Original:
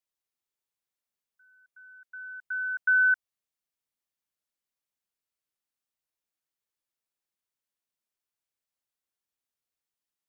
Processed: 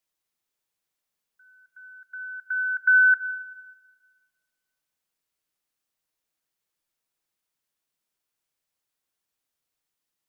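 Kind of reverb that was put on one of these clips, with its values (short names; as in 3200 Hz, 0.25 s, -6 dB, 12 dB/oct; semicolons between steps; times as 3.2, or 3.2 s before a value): shoebox room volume 2300 m³, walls mixed, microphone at 0.56 m; gain +6 dB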